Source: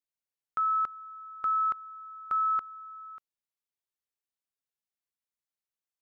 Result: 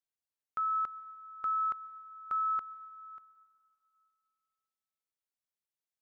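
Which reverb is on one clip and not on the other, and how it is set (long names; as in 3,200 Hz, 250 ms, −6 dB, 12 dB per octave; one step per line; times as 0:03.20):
dense smooth reverb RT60 2.3 s, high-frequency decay 0.95×, pre-delay 105 ms, DRR 17 dB
level −4.5 dB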